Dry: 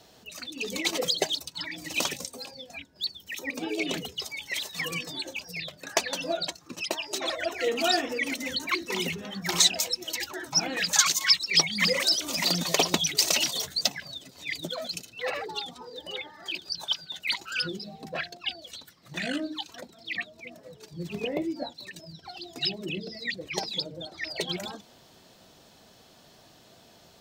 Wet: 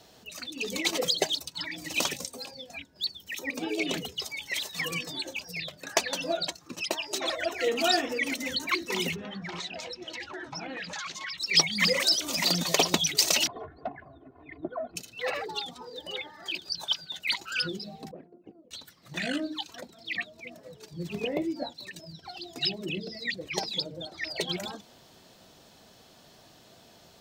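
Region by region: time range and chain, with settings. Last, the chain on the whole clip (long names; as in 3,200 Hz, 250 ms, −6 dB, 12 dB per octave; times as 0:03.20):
0:09.16–0:11.38: low-pass filter 3,100 Hz + downward compressor 5 to 1, threshold −34 dBFS
0:13.47–0:14.96: low-pass filter 1,300 Hz 24 dB per octave + comb filter 2.8 ms, depth 72%
0:18.11–0:18.71: lower of the sound and its delayed copy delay 0.42 ms + flat-topped band-pass 310 Hz, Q 1.1
whole clip: no processing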